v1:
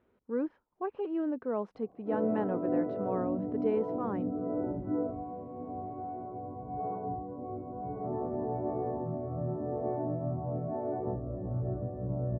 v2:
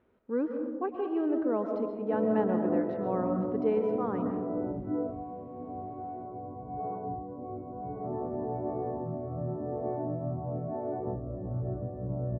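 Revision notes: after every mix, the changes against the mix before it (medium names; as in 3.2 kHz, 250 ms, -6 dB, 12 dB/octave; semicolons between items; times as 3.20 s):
reverb: on, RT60 1.5 s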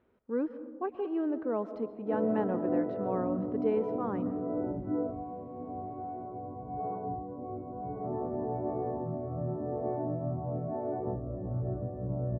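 speech: send -9.5 dB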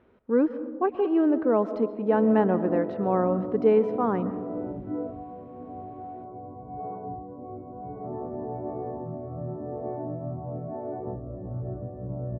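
speech +9.5 dB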